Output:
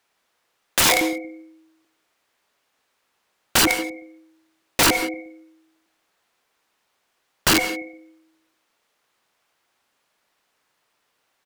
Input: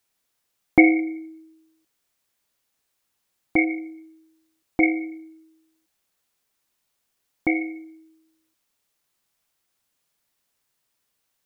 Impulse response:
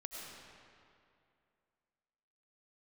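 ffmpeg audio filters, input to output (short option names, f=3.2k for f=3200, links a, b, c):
-filter_complex "[0:a]asplit=2[a][b];[b]adelay=117,lowpass=f=950:p=1,volume=-7dB,asplit=2[c][d];[d]adelay=117,lowpass=f=950:p=1,volume=0.3,asplit=2[e][f];[f]adelay=117,lowpass=f=950:p=1,volume=0.3,asplit=2[g][h];[h]adelay=117,lowpass=f=950:p=1,volume=0.3[i];[a][c][e][g][i]amix=inputs=5:normalize=0,asplit=2[j][k];[k]highpass=f=720:p=1,volume=17dB,asoftclip=type=tanh:threshold=-1.5dB[l];[j][l]amix=inputs=2:normalize=0,lowpass=f=1.4k:p=1,volume=-6dB,aeval=exprs='(mod(5.01*val(0)+1,2)-1)/5.01':c=same,asplit=2[m][n];[1:a]atrim=start_sample=2205,atrim=end_sample=6174,asetrate=33075,aresample=44100[o];[n][o]afir=irnorm=-1:irlink=0,volume=-2.5dB[p];[m][p]amix=inputs=2:normalize=0"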